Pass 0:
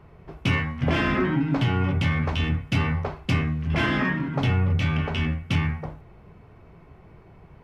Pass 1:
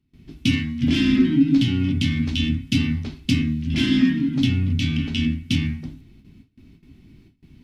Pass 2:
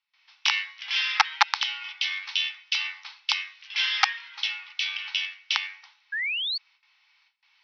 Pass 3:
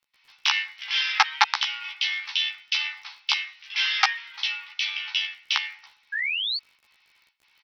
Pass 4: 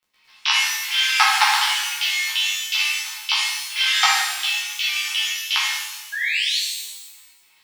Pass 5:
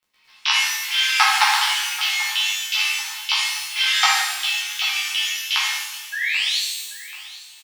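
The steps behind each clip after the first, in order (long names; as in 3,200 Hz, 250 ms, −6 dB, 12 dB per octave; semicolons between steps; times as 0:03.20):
noise gate with hold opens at −40 dBFS; drawn EQ curve 180 Hz 0 dB, 260 Hz +13 dB, 480 Hz −18 dB, 1,100 Hz −18 dB, 3,700 Hz +10 dB, 7,600 Hz +8 dB
wrap-around overflow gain 8.5 dB; sound drawn into the spectrogram rise, 0:06.12–0:06.58, 1,600–4,600 Hz −31 dBFS; Chebyshev band-pass filter 840–5,700 Hz, order 5; level +3 dB
surface crackle 26 per second −47 dBFS; double-tracking delay 14 ms −4 dB
reverb with rising layers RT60 1.1 s, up +12 semitones, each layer −8 dB, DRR −5 dB; level −1 dB
repeating echo 785 ms, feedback 45%, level −17 dB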